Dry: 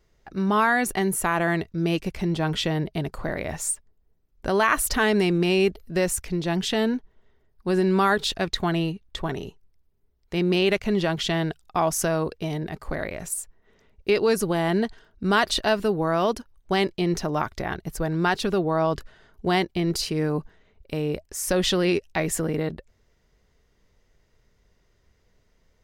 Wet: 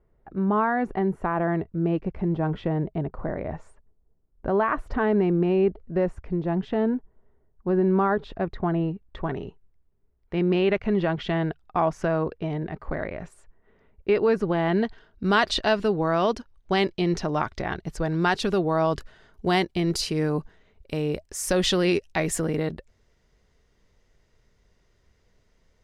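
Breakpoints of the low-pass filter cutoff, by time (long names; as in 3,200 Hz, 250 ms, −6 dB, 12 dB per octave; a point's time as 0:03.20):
0:08.80 1,100 Hz
0:09.34 2,000 Hz
0:14.38 2,000 Hz
0:15.24 5,500 Hz
0:17.90 5,500 Hz
0:18.65 11,000 Hz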